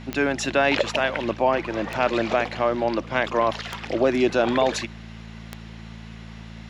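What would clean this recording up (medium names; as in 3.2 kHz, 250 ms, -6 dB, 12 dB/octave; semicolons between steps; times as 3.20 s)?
de-click; de-hum 55.7 Hz, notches 4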